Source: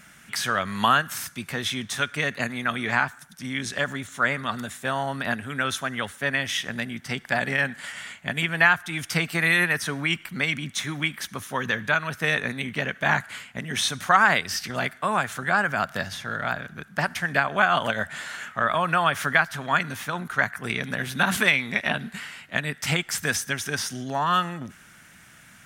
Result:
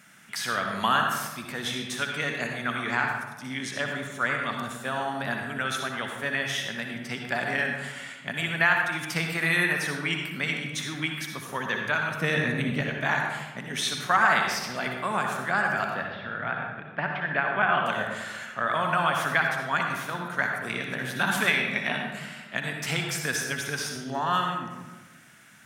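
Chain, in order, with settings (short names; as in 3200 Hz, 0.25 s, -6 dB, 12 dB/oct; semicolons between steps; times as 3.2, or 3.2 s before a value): HPF 130 Hz; 12.16–12.81 low shelf 310 Hz +11.5 dB; 15.94–17.86 inverse Chebyshev low-pass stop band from 7400 Hz, stop band 50 dB; reverb RT60 1.2 s, pre-delay 55 ms, DRR 2 dB; gain -4.5 dB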